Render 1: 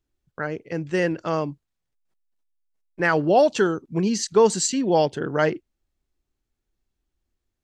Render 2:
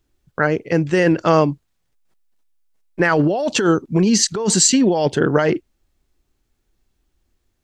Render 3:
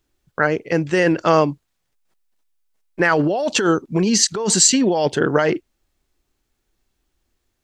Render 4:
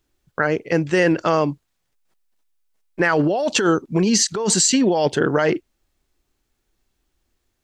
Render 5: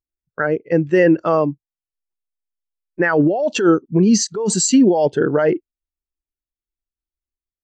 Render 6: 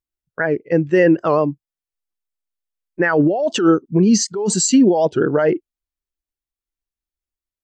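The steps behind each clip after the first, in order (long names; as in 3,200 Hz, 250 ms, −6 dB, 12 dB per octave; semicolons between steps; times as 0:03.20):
compressor whose output falls as the input rises −23 dBFS, ratio −1; level +8 dB
low-shelf EQ 300 Hz −6 dB; level +1 dB
brickwall limiter −6.5 dBFS, peak gain reduction 5 dB
every bin expanded away from the loudest bin 1.5 to 1; level +3 dB
wow of a warped record 78 rpm, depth 160 cents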